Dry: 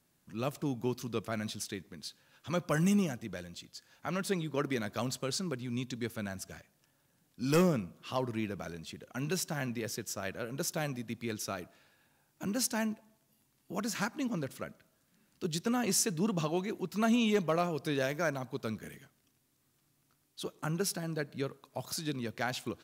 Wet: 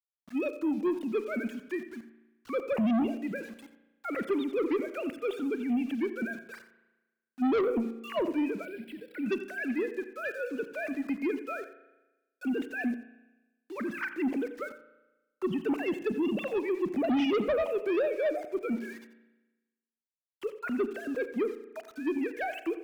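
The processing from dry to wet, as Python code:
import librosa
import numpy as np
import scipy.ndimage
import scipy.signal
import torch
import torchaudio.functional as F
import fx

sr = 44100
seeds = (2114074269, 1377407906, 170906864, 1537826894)

y = fx.sine_speech(x, sr)
y = fx.env_phaser(y, sr, low_hz=590.0, high_hz=1700.0, full_db=-27.0)
y = fx.cheby_harmonics(y, sr, harmonics=(5, 8), levels_db=(-11, -36), full_scale_db=-15.5)
y = np.where(np.abs(y) >= 10.0 ** (-49.0 / 20.0), y, 0.0)
y = y + 10.0 ** (-14.0 / 20.0) * np.pad(y, (int(87 * sr / 1000.0), 0))[:len(y)]
y = fx.rev_spring(y, sr, rt60_s=1.1, pass_ms=(35,), chirp_ms=75, drr_db=12.5)
y = fx.fold_sine(y, sr, drive_db=5, ceiling_db=-14.5)
y = fx.fixed_phaser(y, sr, hz=2800.0, stages=4, at=(8.65, 9.26))
y = y * librosa.db_to_amplitude(-9.0)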